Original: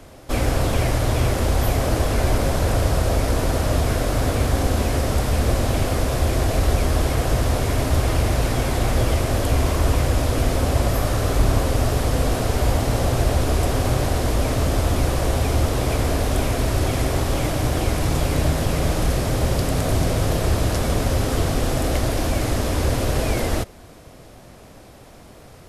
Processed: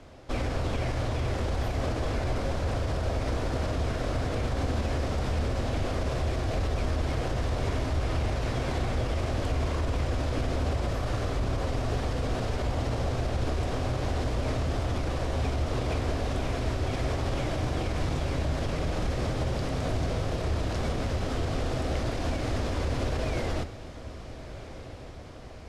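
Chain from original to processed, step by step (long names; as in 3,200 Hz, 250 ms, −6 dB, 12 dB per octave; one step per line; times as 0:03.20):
low-pass filter 5,400 Hz 12 dB per octave
brickwall limiter −15 dBFS, peak gain reduction 9 dB
feedback delay with all-pass diffusion 1,341 ms, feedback 65%, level −15 dB
convolution reverb RT60 0.50 s, pre-delay 7 ms, DRR 11.5 dB
level −6 dB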